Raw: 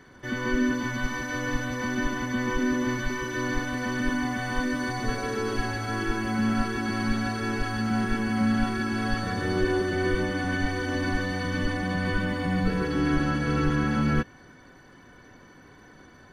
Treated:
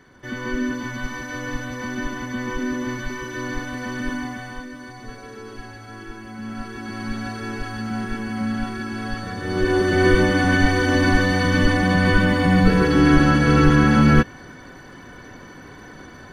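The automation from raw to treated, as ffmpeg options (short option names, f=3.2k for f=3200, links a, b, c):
-af "volume=19dB,afade=t=out:st=4.14:d=0.53:silence=0.354813,afade=t=in:st=6.37:d=0.9:silence=0.398107,afade=t=in:st=9.42:d=0.65:silence=0.281838"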